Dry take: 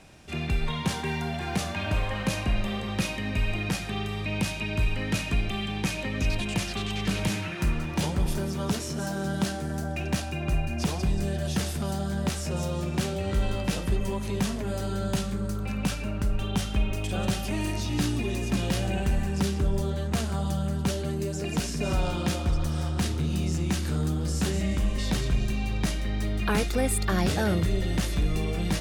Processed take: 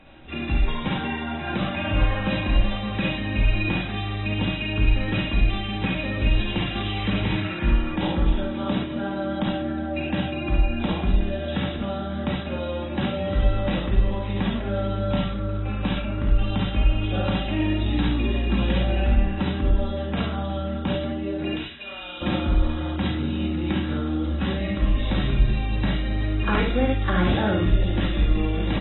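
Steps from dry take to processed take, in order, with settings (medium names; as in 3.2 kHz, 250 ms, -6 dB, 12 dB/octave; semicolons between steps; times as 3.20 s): 21.56–22.22 s: band-pass filter 3.2 kHz, Q 1.1; multi-tap echo 48/50/55/67/70 ms -14.5/-13/-6/-12.5/-5 dB; reverberation RT60 0.30 s, pre-delay 4 ms, DRR 4 dB; AAC 16 kbps 22.05 kHz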